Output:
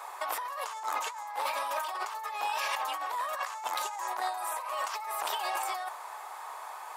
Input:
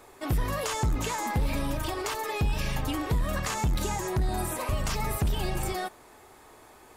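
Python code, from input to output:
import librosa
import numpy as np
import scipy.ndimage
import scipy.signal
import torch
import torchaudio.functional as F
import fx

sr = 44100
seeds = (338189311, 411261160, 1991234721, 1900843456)

y = scipy.signal.sosfilt(scipy.signal.butter(4, 640.0, 'highpass', fs=sr, output='sos'), x)
y = fx.peak_eq(y, sr, hz=1000.0, db=11.0, octaves=1.0)
y = fx.over_compress(y, sr, threshold_db=-35.0, ratio=-1.0)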